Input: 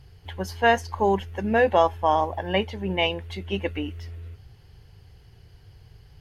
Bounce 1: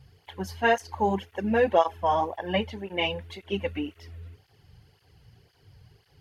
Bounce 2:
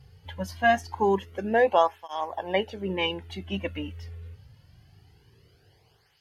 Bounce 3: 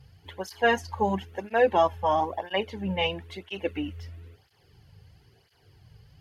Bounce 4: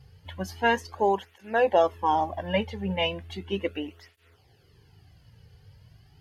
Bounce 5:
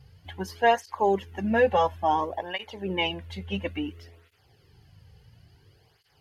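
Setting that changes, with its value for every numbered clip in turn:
tape flanging out of phase, nulls at: 1.9, 0.24, 1, 0.36, 0.58 Hz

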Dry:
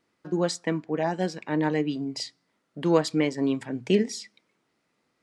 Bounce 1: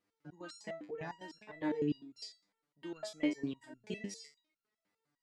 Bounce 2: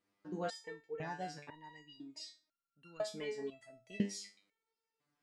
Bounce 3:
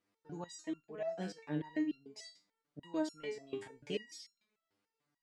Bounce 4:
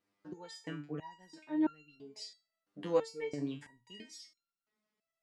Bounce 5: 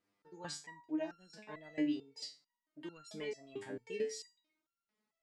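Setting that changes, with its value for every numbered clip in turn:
stepped resonator, rate: 9.9, 2, 6.8, 3, 4.5 Hz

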